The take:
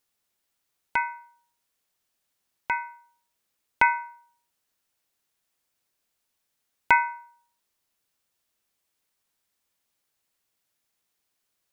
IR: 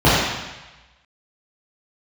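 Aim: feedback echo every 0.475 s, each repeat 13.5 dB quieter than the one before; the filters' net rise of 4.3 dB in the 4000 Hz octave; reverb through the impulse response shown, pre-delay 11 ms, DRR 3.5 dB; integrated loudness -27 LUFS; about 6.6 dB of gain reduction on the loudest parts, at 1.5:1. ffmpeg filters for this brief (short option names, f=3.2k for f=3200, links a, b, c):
-filter_complex "[0:a]equalizer=f=4k:t=o:g=6,acompressor=threshold=-32dB:ratio=1.5,aecho=1:1:475|950:0.211|0.0444,asplit=2[a][b];[1:a]atrim=start_sample=2205,adelay=11[c];[b][c]afir=irnorm=-1:irlink=0,volume=-30.5dB[d];[a][d]amix=inputs=2:normalize=0,volume=4dB"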